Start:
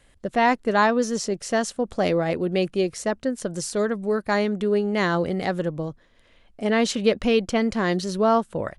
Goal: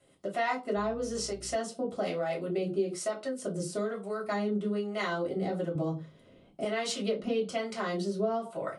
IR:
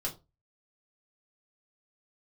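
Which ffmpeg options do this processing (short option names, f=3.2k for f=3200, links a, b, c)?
-filter_complex "[0:a]highpass=190,equalizer=f=9k:t=o:w=0.37:g=5,bandreject=f=1.7k:w=8.6[a];[1:a]atrim=start_sample=2205[b];[a][b]afir=irnorm=-1:irlink=0,acompressor=threshold=-29dB:ratio=2.5,acrossover=split=600[c][d];[c]aeval=exprs='val(0)*(1-0.7/2+0.7/2*cos(2*PI*1.1*n/s))':c=same[e];[d]aeval=exprs='val(0)*(1-0.7/2-0.7/2*cos(2*PI*1.1*n/s))':c=same[f];[e][f]amix=inputs=2:normalize=0,asettb=1/sr,asplit=3[g][h][i];[g]atrim=end=0.774[j];[h]atrim=start=0.77:end=1.56,asetpts=PTS-STARTPTS,afade=t=in:d=0.004:c=qsin,afade=t=out:st=0.786:d=0.004:c=qsin,aeval=exprs='val(0)+0.00398*(sin(2*PI*60*n/s)+sin(2*PI*2*60*n/s)/2+sin(2*PI*3*60*n/s)/3+sin(2*PI*4*60*n/s)/4+sin(2*PI*5*60*n/s)/5)':c=same[k];[i]atrim=start=1.556[l];[j][k]acrossfade=d=0.004:c1=hsin:c2=qsin[m];[m][l]acrossfade=d=0.004:c1=qsin:c2=hsin,asettb=1/sr,asplit=3[n][o][p];[n]atrim=end=5.754[q];[o]atrim=start=5.75:end=6.65,asetpts=PTS-STARTPTS,afade=t=in:d=0.004:c=qsin,afade=t=out:st=0.896:d=0.004:c=qsin,lowshelf=f=410:g=12[r];[p]atrim=start=6.646[s];[q][r]acrossfade=d=0.004:c1=hsin:c2=qsin[t];[t][s]acrossfade=d=0.004:c1=qsin:c2=hsin"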